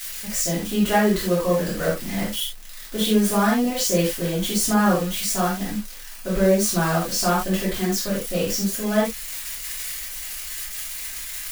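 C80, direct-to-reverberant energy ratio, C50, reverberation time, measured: 9.0 dB, -9.5 dB, 2.5 dB, not exponential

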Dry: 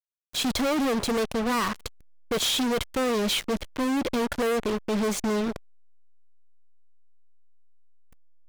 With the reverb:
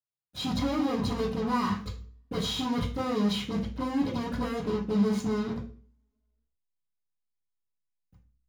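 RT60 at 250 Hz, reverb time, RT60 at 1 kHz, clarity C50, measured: 0.60 s, 0.45 s, 0.40 s, 8.0 dB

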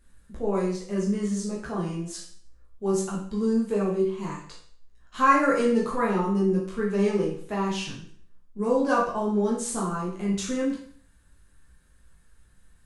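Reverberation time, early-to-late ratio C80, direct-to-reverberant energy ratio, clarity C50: 0.55 s, 8.5 dB, -5.0 dB, 4.0 dB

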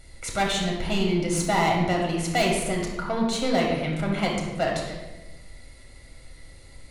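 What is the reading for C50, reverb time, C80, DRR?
2.5 dB, 1.1 s, 5.0 dB, -1.5 dB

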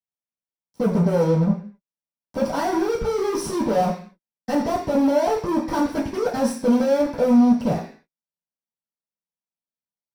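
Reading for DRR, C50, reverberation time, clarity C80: -10.5 dB, 7.5 dB, 0.45 s, 12.0 dB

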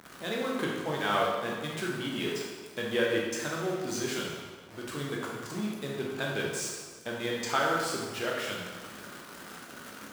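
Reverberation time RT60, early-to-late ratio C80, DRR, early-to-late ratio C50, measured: 1.5 s, 2.5 dB, -3.5 dB, 0.5 dB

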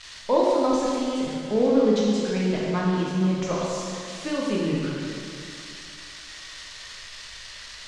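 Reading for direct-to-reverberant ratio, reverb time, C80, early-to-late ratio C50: -5.0 dB, 2.6 s, 0.0 dB, -2.0 dB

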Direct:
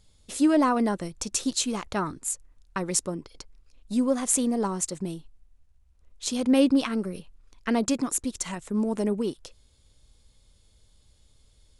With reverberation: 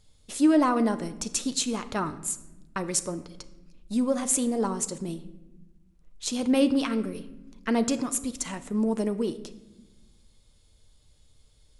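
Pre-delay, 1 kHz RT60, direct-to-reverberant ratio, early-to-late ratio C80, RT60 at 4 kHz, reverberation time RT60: 7 ms, 0.90 s, 9.5 dB, 16.5 dB, 0.65 s, 1.0 s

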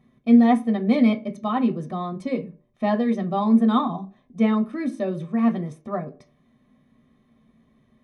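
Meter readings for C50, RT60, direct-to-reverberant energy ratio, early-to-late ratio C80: 16.0 dB, 0.45 s, 4.0 dB, 21.5 dB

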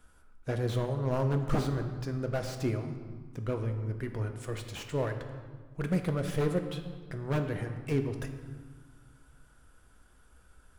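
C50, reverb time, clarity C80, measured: 8.0 dB, 1.6 s, 9.5 dB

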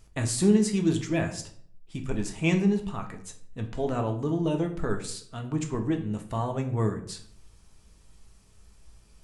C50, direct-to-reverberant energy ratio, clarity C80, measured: 11.0 dB, 3.0 dB, 14.5 dB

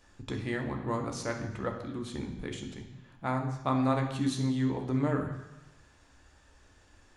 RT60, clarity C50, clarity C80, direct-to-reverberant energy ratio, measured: 1.0 s, 7.0 dB, 9.5 dB, 2.0 dB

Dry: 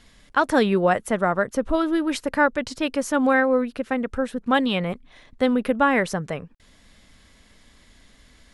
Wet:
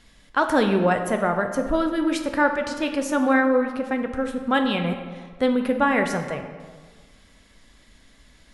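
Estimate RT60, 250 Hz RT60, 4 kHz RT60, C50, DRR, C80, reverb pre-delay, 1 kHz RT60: 1.6 s, 1.5 s, 1.0 s, 7.5 dB, 5.0 dB, 9.0 dB, 3 ms, 1.6 s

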